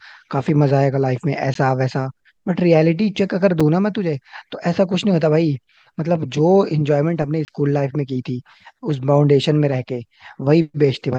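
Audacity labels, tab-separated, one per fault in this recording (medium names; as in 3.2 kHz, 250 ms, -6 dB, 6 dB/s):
1.540000	1.550000	dropout 13 ms
3.600000	3.600000	dropout 4.9 ms
7.450000	7.480000	dropout 29 ms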